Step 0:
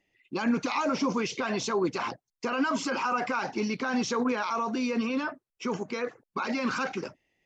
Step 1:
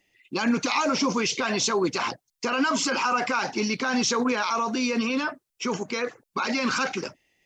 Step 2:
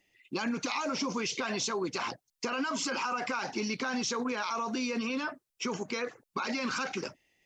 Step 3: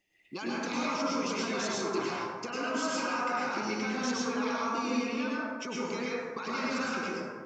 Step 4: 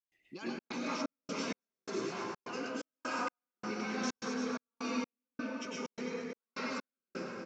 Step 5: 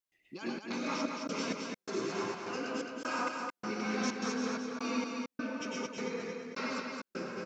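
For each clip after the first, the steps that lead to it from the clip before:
high-shelf EQ 2,700 Hz +9.5 dB; level +2.5 dB
downward compressor 4 to 1, threshold −27 dBFS, peak gain reduction 7.5 dB; level −3 dB
dense smooth reverb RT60 1.7 s, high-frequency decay 0.35×, pre-delay 90 ms, DRR −6 dB; level −6 dB
rotating-speaker cabinet horn 6 Hz, later 1.2 Hz, at 0:00.31; repeating echo 227 ms, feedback 48%, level −7 dB; gate pattern ".xxxx.xxx..xx.." 128 BPM −60 dB; level −3.5 dB
single-tap delay 217 ms −4.5 dB; level +1.5 dB

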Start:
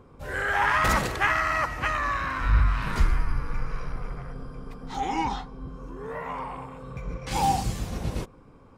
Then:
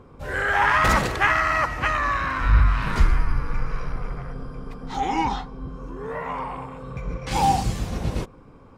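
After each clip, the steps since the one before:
high-shelf EQ 8,600 Hz −6.5 dB
level +4 dB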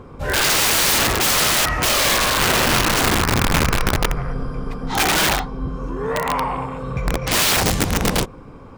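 wrap-around overflow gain 20.5 dB
level +8.5 dB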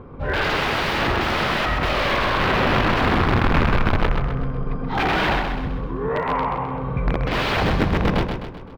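high-frequency loss of the air 360 metres
repeating echo 129 ms, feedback 47%, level −6 dB

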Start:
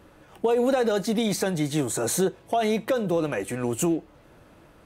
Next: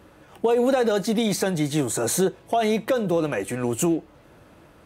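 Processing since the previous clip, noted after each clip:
high-pass filter 40 Hz
level +2 dB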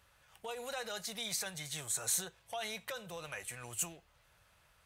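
guitar amp tone stack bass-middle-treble 10-0-10
level −6 dB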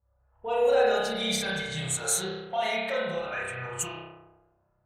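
spring reverb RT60 1.7 s, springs 31 ms, chirp 20 ms, DRR −6.5 dB
low-pass that shuts in the quiet parts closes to 760 Hz, open at −32.5 dBFS
every bin expanded away from the loudest bin 1.5 to 1
level +7 dB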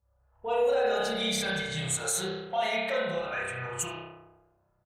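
brickwall limiter −18.5 dBFS, peak gain reduction 6 dB
single-tap delay 73 ms −23 dB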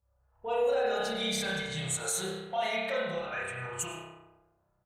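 dense smooth reverb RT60 0.54 s, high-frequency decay 0.8×, pre-delay 85 ms, DRR 15.5 dB
level −2.5 dB

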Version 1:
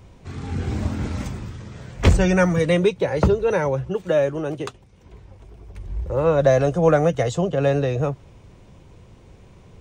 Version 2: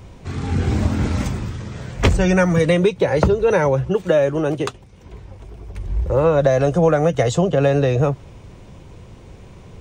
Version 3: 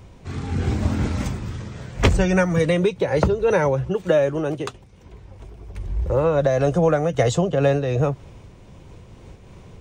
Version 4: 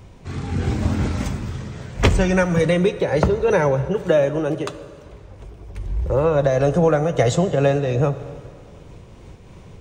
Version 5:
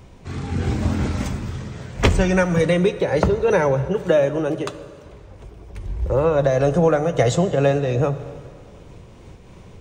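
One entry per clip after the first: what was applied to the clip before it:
downward compressor 6 to 1, threshold −18 dBFS, peak gain reduction 9.5 dB; level +6.5 dB
amplitude modulation by smooth noise, depth 60%
dense smooth reverb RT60 2.3 s, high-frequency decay 0.8×, DRR 12 dB; level +1 dB
mains-hum notches 50/100/150 Hz

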